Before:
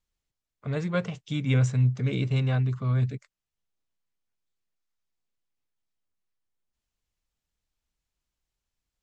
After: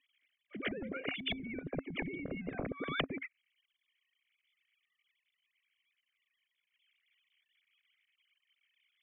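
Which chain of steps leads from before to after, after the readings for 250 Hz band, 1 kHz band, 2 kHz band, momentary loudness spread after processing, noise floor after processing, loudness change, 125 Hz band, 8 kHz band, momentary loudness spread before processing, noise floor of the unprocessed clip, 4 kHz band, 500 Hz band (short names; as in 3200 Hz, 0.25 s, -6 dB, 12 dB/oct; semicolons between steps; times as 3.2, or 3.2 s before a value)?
-9.5 dB, -4.5 dB, -1.5 dB, 5 LU, under -85 dBFS, -13.0 dB, -25.0 dB, n/a, 9 LU, under -85 dBFS, 0.0 dB, -7.0 dB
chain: sine-wave speech; vowel filter i; limiter -28.5 dBFS, peak gain reduction 11 dB; treble ducked by the level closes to 340 Hz, closed at -36.5 dBFS; pre-echo 0.119 s -20 dB; spectral compressor 10:1; gain +10.5 dB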